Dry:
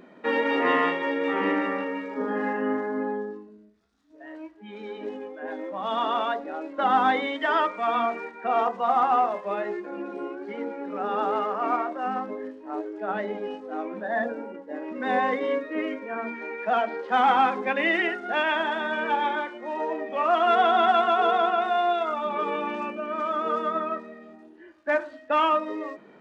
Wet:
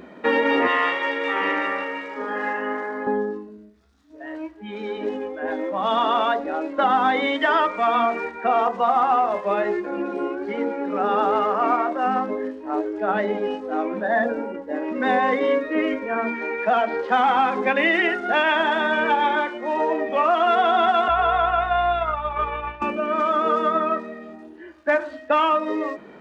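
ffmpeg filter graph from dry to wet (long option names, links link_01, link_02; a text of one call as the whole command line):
ffmpeg -i in.wav -filter_complex "[0:a]asettb=1/sr,asplit=3[link_01][link_02][link_03];[link_01]atrim=end=0.674[link_04];[link_02]atrim=start=0.67:end=3.07,asetpts=PTS-STARTPTS,afade=type=in:duration=0.004:curve=qsin,afade=type=out:start_time=2.396:duration=0.004:curve=qsin,highpass=frequency=1100:poles=1,asplit=6[link_05][link_06][link_07][link_08][link_09][link_10];[link_06]adelay=91,afreqshift=64,volume=-18.5dB[link_11];[link_07]adelay=182,afreqshift=128,volume=-23.7dB[link_12];[link_08]adelay=273,afreqshift=192,volume=-28.9dB[link_13];[link_09]adelay=364,afreqshift=256,volume=-34.1dB[link_14];[link_10]adelay=455,afreqshift=320,volume=-39.3dB[link_15];[link_05][link_11][link_12][link_13][link_14][link_15]amix=inputs=6:normalize=0,atrim=end_sample=105840[link_16];[link_03]atrim=start=3.066[link_17];[link_04][link_16]acrossfade=duration=0.004:curve1=hsin:curve2=qsin[link_18];[link_18][link_17]acrossfade=duration=0.004:curve1=qsin:curve2=hsin,asettb=1/sr,asplit=3[link_19][link_20][link_21];[link_19]atrim=end=21.084[link_22];[link_20]atrim=start=21.08:end=22.82,asetpts=PTS-STARTPTS,afade=type=in:duration=0.004:curve=qsin,afade=type=out:start_time=1.736:duration=0.004:curve=qsin,highpass=750,lowpass=2800,aeval=exprs='val(0)+0.00562*(sin(2*PI*60*n/s)+sin(2*PI*2*60*n/s)/2+sin(2*PI*3*60*n/s)/3+sin(2*PI*4*60*n/s)/4+sin(2*PI*5*60*n/s)/5)':channel_layout=same,agate=range=-33dB:threshold=-28dB:ratio=3:release=100:detection=peak[link_23];[link_21]atrim=start=22.816[link_24];[link_22][link_23]acrossfade=duration=0.004:curve1=hsin:curve2=qsin[link_25];[link_25][link_24]acrossfade=duration=0.004:curve1=qsin:curve2=hsin,equalizer=frequency=68:width_type=o:width=0.28:gain=14.5,acompressor=threshold=-23dB:ratio=6,volume=7.5dB" out.wav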